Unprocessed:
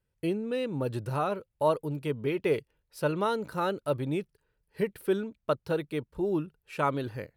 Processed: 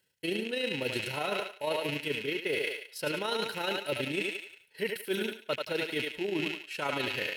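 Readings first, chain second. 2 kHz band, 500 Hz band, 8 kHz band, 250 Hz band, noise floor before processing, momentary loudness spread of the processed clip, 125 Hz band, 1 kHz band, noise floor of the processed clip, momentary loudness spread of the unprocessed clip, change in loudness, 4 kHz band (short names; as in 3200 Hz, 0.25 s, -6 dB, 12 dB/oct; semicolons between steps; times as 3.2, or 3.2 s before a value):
+7.5 dB, -3.5 dB, +6.5 dB, -4.5 dB, -79 dBFS, 4 LU, -9.0 dB, -5.0 dB, -61 dBFS, 5 LU, -1.5 dB, +11.5 dB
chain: rattling part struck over -45 dBFS, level -33 dBFS; high shelf 10000 Hz +11.5 dB; notch comb 1200 Hz; thinning echo 90 ms, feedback 46%, high-pass 480 Hz, level -6 dB; AM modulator 28 Hz, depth 30%; weighting filter D; reverse; compressor 6:1, threshold -38 dBFS, peak gain reduction 15 dB; reverse; gain +8.5 dB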